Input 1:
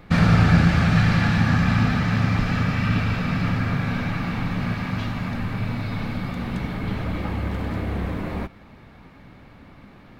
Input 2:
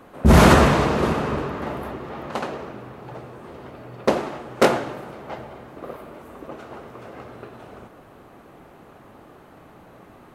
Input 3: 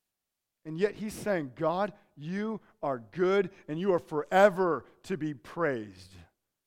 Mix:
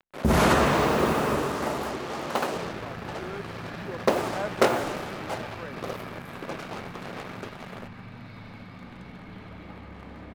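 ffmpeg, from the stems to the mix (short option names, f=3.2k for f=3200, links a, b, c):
-filter_complex "[0:a]acompressor=threshold=-21dB:ratio=6,adelay=2450,volume=-13dB,asplit=2[a][b];[b]volume=-6.5dB[c];[1:a]acrusher=bits=5:mix=0:aa=0.5,acompressor=threshold=-19dB:ratio=2.5,volume=1.5dB[d];[2:a]volume=-11.5dB[e];[c]aecho=0:1:144:1[f];[a][d][e][f]amix=inputs=4:normalize=0,anlmdn=0.000631,lowshelf=f=180:g=-7.5"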